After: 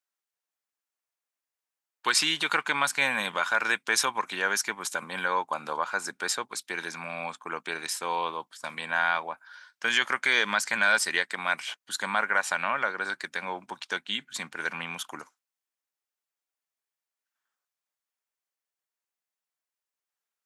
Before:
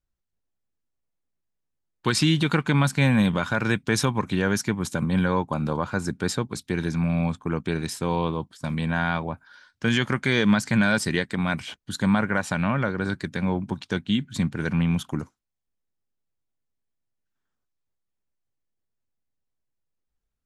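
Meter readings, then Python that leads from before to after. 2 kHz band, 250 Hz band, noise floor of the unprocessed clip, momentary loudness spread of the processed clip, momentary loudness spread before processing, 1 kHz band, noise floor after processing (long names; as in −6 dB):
+2.5 dB, −19.5 dB, −80 dBFS, 12 LU, 9 LU, +1.0 dB, below −85 dBFS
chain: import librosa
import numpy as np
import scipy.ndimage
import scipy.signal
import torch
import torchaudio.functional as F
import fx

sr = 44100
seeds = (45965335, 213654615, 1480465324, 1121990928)

y = scipy.signal.sosfilt(scipy.signal.butter(2, 860.0, 'highpass', fs=sr, output='sos'), x)
y = fx.peak_eq(y, sr, hz=3800.0, db=-2.5, octaves=0.77)
y = F.gain(torch.from_numpy(y), 3.0).numpy()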